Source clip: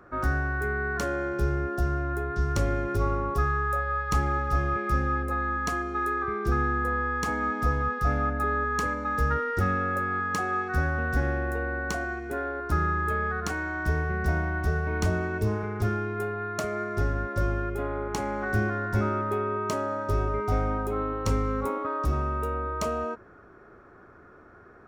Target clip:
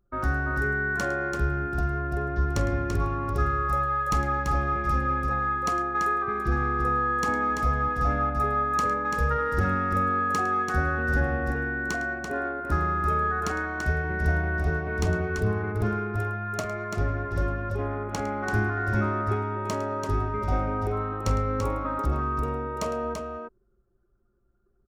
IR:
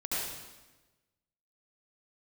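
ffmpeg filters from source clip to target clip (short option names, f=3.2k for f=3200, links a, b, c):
-af "anlmdn=3.98,aecho=1:1:47|107|337:0.141|0.178|0.531"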